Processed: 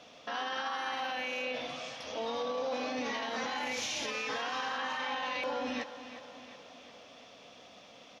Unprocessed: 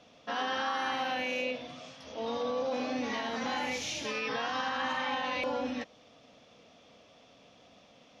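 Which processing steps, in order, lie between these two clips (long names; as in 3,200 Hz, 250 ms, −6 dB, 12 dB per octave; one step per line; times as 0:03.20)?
low-shelf EQ 320 Hz −9 dB
brickwall limiter −33 dBFS, peak gain reduction 11 dB
repeating echo 362 ms, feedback 55%, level −13 dB
level +6 dB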